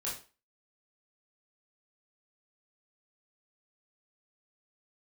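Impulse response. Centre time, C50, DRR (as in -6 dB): 33 ms, 5.5 dB, -6.5 dB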